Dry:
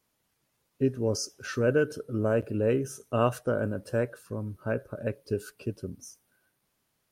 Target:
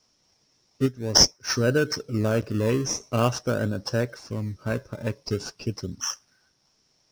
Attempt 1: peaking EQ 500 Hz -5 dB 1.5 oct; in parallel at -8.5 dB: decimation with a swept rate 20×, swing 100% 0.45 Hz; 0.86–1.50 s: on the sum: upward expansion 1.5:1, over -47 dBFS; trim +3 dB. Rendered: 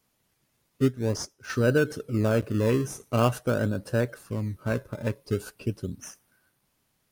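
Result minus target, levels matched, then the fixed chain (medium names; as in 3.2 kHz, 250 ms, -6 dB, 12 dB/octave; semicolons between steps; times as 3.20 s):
4 kHz band -13.5 dB
resonant low-pass 5.5 kHz, resonance Q 11; peaking EQ 500 Hz -5 dB 1.5 oct; in parallel at -8.5 dB: decimation with a swept rate 20×, swing 100% 0.45 Hz; 0.86–1.50 s: on the sum: upward expansion 1.5:1, over -47 dBFS; trim +3 dB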